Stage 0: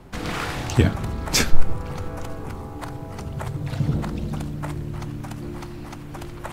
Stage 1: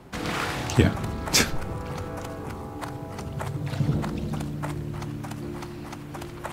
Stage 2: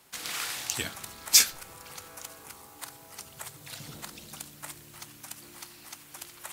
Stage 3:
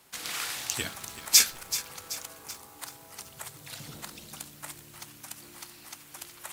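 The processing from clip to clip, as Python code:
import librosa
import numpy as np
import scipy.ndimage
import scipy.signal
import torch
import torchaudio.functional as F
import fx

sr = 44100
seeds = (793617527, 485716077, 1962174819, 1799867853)

y1 = fx.highpass(x, sr, hz=100.0, slope=6)
y2 = F.preemphasis(torch.from_numpy(y1), 0.97).numpy()
y2 = y2 * librosa.db_to_amplitude(5.5)
y3 = fx.echo_crushed(y2, sr, ms=381, feedback_pct=55, bits=7, wet_db=-12.5)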